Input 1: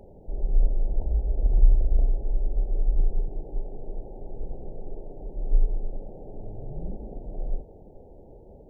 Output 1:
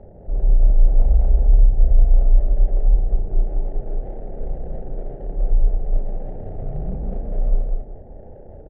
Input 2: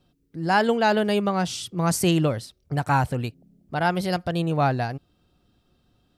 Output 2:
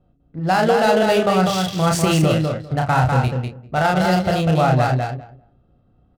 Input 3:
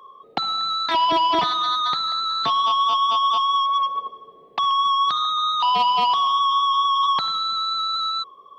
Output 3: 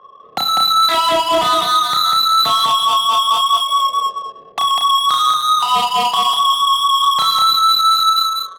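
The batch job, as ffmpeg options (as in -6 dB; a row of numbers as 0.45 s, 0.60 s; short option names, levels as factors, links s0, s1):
-filter_complex "[0:a]aecho=1:1:1.5:0.35,asplit=2[s0][s1];[s1]aecho=0:1:32|54:0.668|0.188[s2];[s0][s2]amix=inputs=2:normalize=0,alimiter=limit=0.224:level=0:latency=1:release=30,asplit=2[s3][s4];[s4]aecho=0:1:198|396|594:0.631|0.101|0.0162[s5];[s3][s5]amix=inputs=2:normalize=0,adynamicsmooth=sensitivity=7.5:basefreq=1100,volume=1.68"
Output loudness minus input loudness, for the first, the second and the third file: +8.0 LU, +5.5 LU, +7.0 LU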